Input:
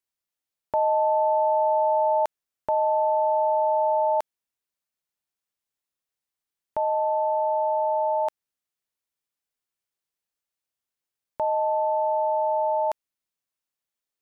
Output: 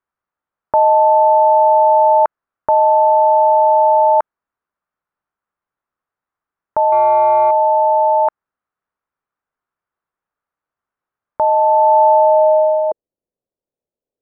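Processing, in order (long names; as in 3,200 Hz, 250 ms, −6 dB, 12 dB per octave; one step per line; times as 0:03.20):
0:06.92–0:07.51: leveller curve on the samples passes 1
low-pass filter sweep 1,300 Hz → 500 Hz, 0:11.55–0:12.82
level +7.5 dB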